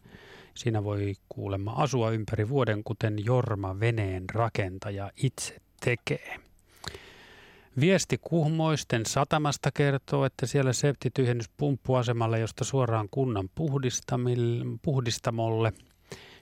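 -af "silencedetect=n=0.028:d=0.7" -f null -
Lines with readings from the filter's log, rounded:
silence_start: 6.95
silence_end: 7.77 | silence_duration: 0.82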